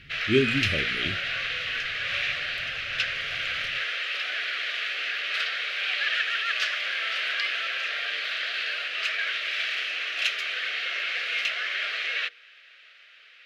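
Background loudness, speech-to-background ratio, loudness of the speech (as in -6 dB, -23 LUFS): -27.0 LUFS, -1.0 dB, -28.0 LUFS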